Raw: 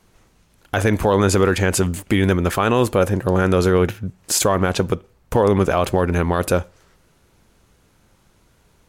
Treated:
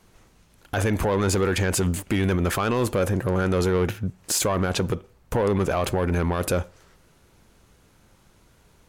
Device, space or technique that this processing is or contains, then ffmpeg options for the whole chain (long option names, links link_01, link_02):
soft clipper into limiter: -af "asoftclip=type=tanh:threshold=-11.5dB,alimiter=limit=-16dB:level=0:latency=1:release=40"